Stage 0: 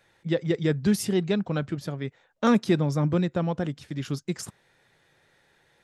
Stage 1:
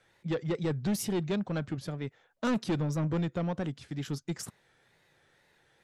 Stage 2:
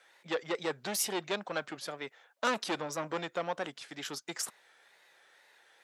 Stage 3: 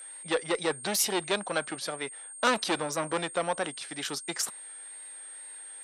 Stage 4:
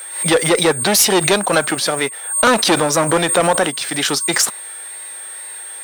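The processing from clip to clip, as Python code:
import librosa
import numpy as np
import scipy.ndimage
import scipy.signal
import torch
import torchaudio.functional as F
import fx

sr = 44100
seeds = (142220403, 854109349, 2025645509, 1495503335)

y1 = fx.wow_flutter(x, sr, seeds[0], rate_hz=2.1, depth_cents=91.0)
y1 = 10.0 ** (-21.5 / 20.0) * np.tanh(y1 / 10.0 ** (-21.5 / 20.0))
y1 = y1 * librosa.db_to_amplitude(-3.0)
y2 = scipy.signal.sosfilt(scipy.signal.butter(2, 630.0, 'highpass', fs=sr, output='sos'), y1)
y2 = y2 * librosa.db_to_amplitude(5.5)
y3 = fx.cheby_harmonics(y2, sr, harmonics=(2,), levels_db=(-26,), full_scale_db=-15.5)
y3 = y3 + 10.0 ** (-47.0 / 20.0) * np.sin(2.0 * np.pi * 8600.0 * np.arange(len(y3)) / sr)
y3 = fx.peak_eq(y3, sr, hz=4000.0, db=2.5, octaves=0.37)
y3 = y3 * librosa.db_to_amplitude(5.0)
y4 = fx.leveller(y3, sr, passes=3)
y4 = fx.pre_swell(y4, sr, db_per_s=89.0)
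y4 = y4 * librosa.db_to_amplitude(5.0)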